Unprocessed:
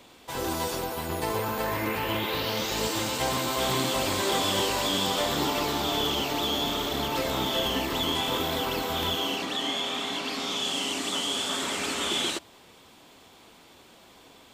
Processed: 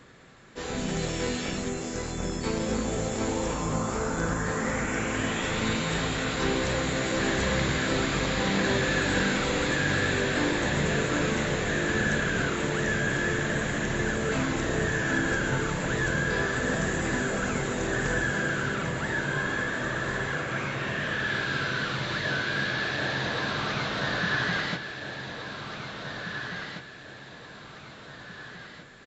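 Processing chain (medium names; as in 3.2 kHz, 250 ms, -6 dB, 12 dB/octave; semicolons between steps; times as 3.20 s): feedback delay 1016 ms, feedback 38%, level -8 dB; speed mistake 15 ips tape played at 7.5 ips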